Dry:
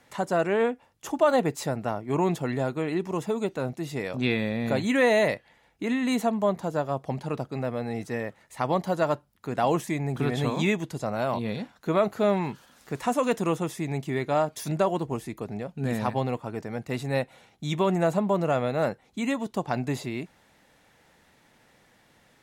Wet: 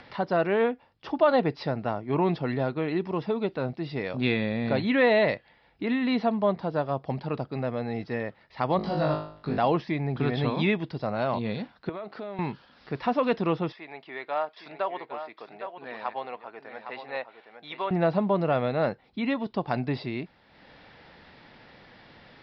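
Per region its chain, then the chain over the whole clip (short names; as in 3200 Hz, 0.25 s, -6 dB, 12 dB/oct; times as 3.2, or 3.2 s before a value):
8.77–9.58 tone controls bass +8 dB, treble +5 dB + compressor 2:1, threshold -28 dBFS + flutter echo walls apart 3.3 m, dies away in 0.54 s
11.89–12.39 compressor 12:1, threshold -32 dBFS + HPF 230 Hz
13.72–17.91 HPF 730 Hz + air absorption 210 m + echo 0.811 s -9 dB
whole clip: steep low-pass 5200 Hz 96 dB/oct; upward compressor, threshold -42 dBFS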